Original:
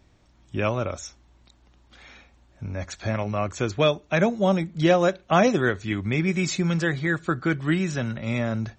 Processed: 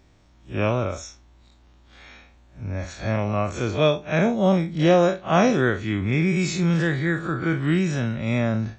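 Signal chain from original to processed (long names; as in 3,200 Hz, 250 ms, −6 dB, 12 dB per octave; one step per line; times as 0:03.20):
spectrum smeared in time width 96 ms
level +4 dB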